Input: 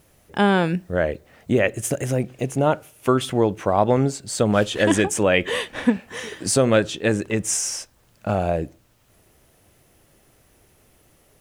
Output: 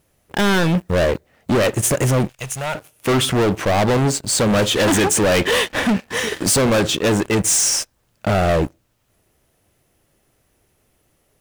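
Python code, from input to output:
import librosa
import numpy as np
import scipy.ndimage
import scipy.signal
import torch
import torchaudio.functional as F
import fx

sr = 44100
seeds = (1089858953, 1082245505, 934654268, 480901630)

y = fx.leveller(x, sr, passes=3)
y = fx.tone_stack(y, sr, knobs='10-0-10', at=(2.29, 2.75))
y = np.clip(y, -10.0 ** (-14.0 / 20.0), 10.0 ** (-14.0 / 20.0))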